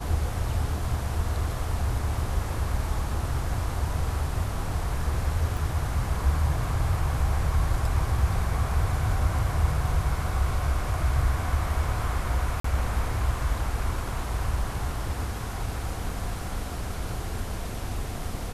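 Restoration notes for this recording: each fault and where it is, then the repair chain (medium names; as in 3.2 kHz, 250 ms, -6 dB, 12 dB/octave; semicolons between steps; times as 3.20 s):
5.57 s: dropout 2.5 ms
12.60–12.64 s: dropout 44 ms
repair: interpolate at 5.57 s, 2.5 ms; interpolate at 12.60 s, 44 ms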